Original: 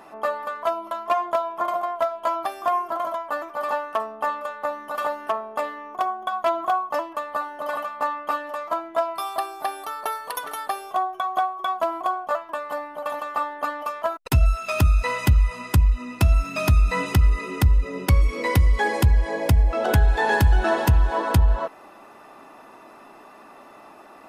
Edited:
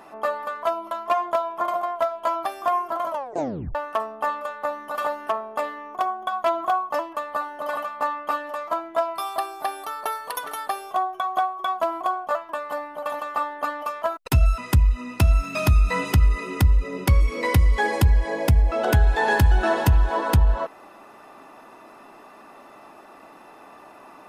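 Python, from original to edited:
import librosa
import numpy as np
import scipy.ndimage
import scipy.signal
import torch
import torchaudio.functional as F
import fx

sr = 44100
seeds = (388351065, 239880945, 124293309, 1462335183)

y = fx.edit(x, sr, fx.tape_stop(start_s=3.1, length_s=0.65),
    fx.cut(start_s=14.58, length_s=1.01), tone=tone)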